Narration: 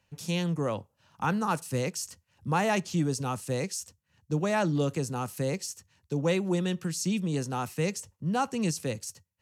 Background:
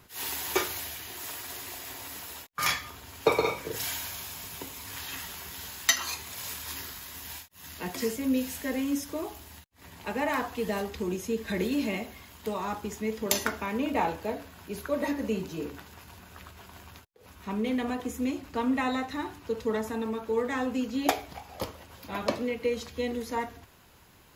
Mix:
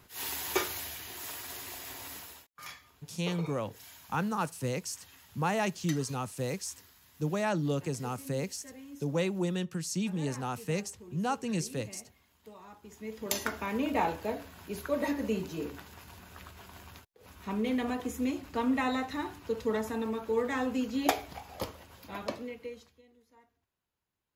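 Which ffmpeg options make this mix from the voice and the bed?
-filter_complex "[0:a]adelay=2900,volume=0.668[s0];[1:a]volume=5.31,afade=t=out:st=2.12:d=0.39:silence=0.158489,afade=t=in:st=12.8:d=0.93:silence=0.141254,afade=t=out:st=21.52:d=1.5:silence=0.0334965[s1];[s0][s1]amix=inputs=2:normalize=0"

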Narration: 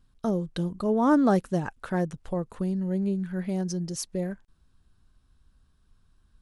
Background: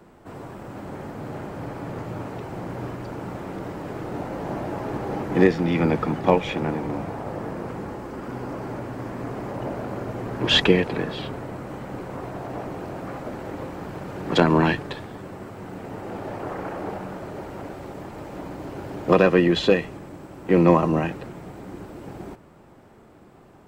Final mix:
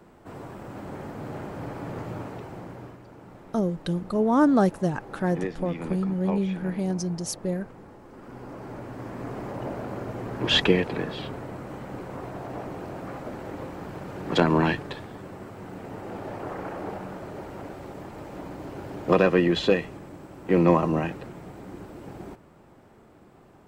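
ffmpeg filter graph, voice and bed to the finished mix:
-filter_complex "[0:a]adelay=3300,volume=1.19[s0];[1:a]volume=2.82,afade=t=out:st=2.09:d=0.93:silence=0.251189,afade=t=in:st=8.01:d=1.32:silence=0.281838[s1];[s0][s1]amix=inputs=2:normalize=0"

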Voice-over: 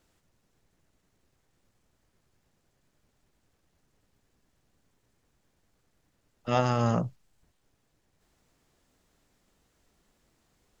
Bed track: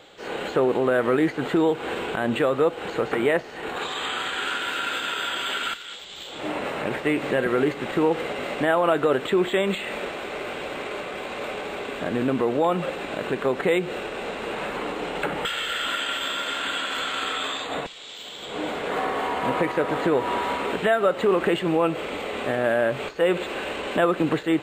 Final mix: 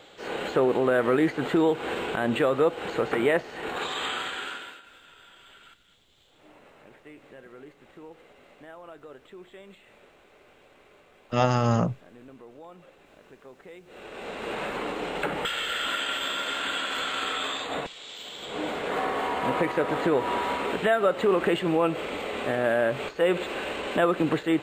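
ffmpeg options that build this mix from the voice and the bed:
-filter_complex "[0:a]adelay=4850,volume=1.41[s0];[1:a]volume=11.9,afade=t=out:st=4.05:d=0.77:silence=0.0668344,afade=t=in:st=13.85:d=0.68:silence=0.0707946[s1];[s0][s1]amix=inputs=2:normalize=0"

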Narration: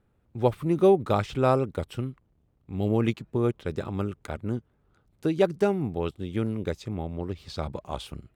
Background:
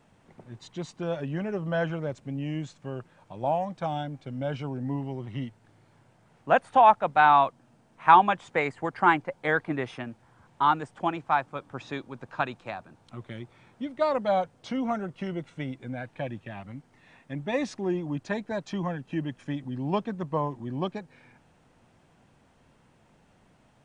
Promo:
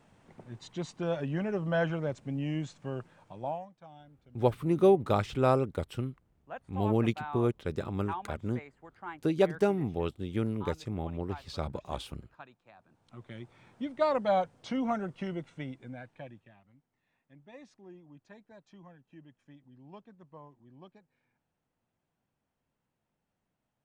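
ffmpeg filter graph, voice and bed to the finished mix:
-filter_complex "[0:a]adelay=4000,volume=0.708[s0];[1:a]volume=8.41,afade=t=out:st=3.12:d=0.59:silence=0.0944061,afade=t=in:st=12.73:d=0.95:silence=0.105925,afade=t=out:st=15.09:d=1.51:silence=0.0944061[s1];[s0][s1]amix=inputs=2:normalize=0"

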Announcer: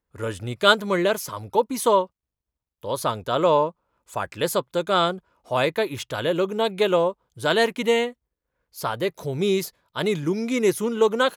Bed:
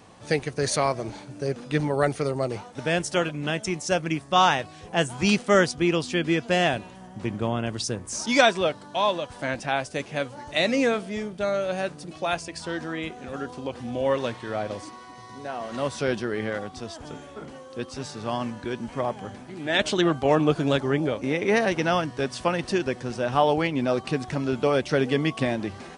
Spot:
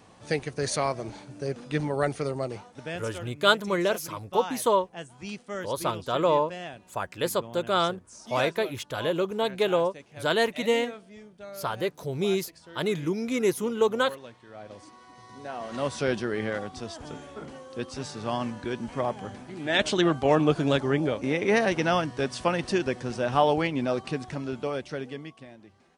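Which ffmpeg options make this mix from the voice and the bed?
-filter_complex "[0:a]adelay=2800,volume=0.631[s0];[1:a]volume=3.98,afade=t=out:st=2.33:d=0.82:silence=0.223872,afade=t=in:st=14.52:d=1.41:silence=0.16788,afade=t=out:st=23.43:d=1.99:silence=0.0891251[s1];[s0][s1]amix=inputs=2:normalize=0"

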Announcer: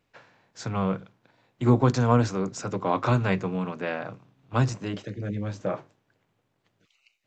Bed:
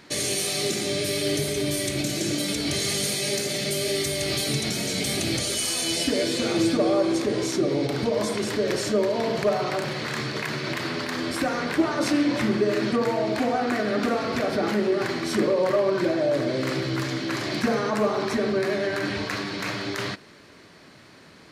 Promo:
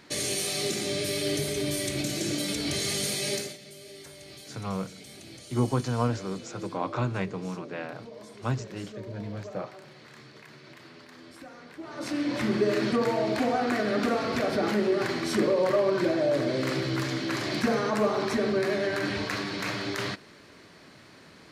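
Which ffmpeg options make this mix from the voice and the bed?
-filter_complex "[0:a]adelay=3900,volume=0.501[s0];[1:a]volume=5.62,afade=t=out:st=3.34:d=0.23:silence=0.141254,afade=t=in:st=11.8:d=0.83:silence=0.11885[s1];[s0][s1]amix=inputs=2:normalize=0"

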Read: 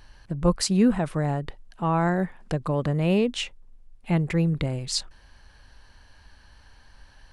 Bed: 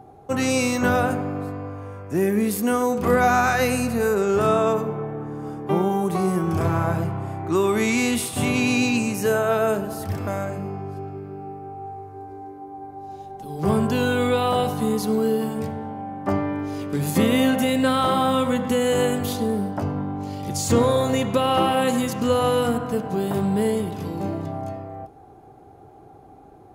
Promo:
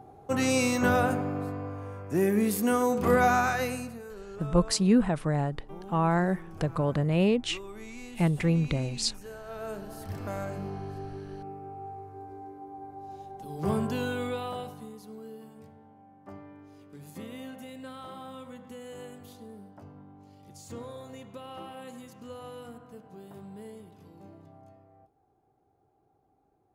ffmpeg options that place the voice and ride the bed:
-filter_complex "[0:a]adelay=4100,volume=0.794[s0];[1:a]volume=4.47,afade=t=out:st=3.21:d=0.82:silence=0.112202,afade=t=in:st=9.44:d=1.21:silence=0.141254,afade=t=out:st=13.42:d=1.5:silence=0.141254[s1];[s0][s1]amix=inputs=2:normalize=0"

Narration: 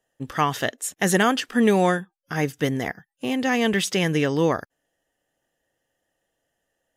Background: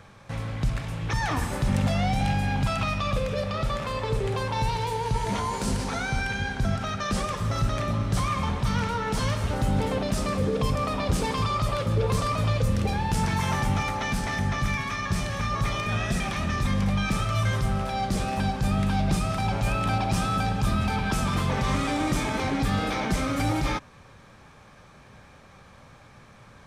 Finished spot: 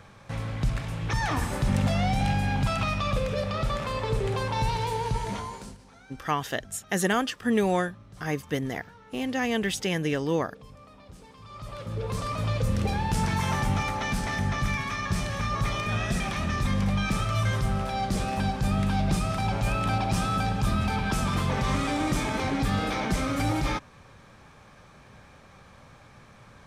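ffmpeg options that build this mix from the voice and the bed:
-filter_complex "[0:a]adelay=5900,volume=0.531[s0];[1:a]volume=12.6,afade=t=out:st=5:d=0.77:silence=0.0707946,afade=t=in:st=11.42:d=1.43:silence=0.0749894[s1];[s0][s1]amix=inputs=2:normalize=0"

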